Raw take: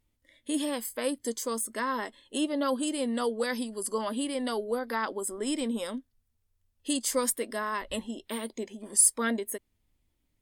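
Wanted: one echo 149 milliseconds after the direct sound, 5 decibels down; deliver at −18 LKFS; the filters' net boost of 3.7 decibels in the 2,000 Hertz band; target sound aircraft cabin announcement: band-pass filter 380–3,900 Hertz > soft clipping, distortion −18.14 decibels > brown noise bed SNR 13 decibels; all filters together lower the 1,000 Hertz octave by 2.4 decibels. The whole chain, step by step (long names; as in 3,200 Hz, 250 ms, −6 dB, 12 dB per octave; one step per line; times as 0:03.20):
band-pass filter 380–3,900 Hz
parametric band 1,000 Hz −4.5 dB
parametric band 2,000 Hz +6.5 dB
single-tap delay 149 ms −5 dB
soft clipping −23 dBFS
brown noise bed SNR 13 dB
level +16.5 dB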